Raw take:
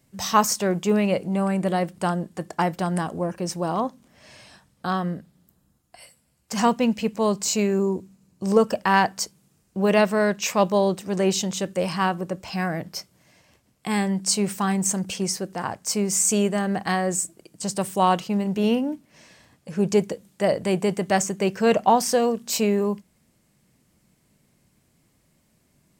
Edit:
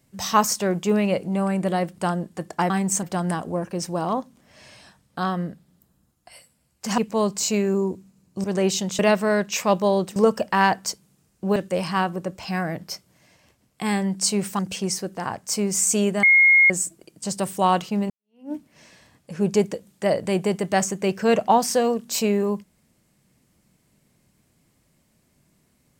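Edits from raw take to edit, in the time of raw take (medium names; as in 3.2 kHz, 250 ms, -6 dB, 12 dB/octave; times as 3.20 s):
6.65–7.03 s: delete
8.49–9.89 s: swap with 11.06–11.61 s
14.64–14.97 s: move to 2.70 s
16.61–17.08 s: bleep 2.15 kHz -11 dBFS
18.48–18.90 s: fade in exponential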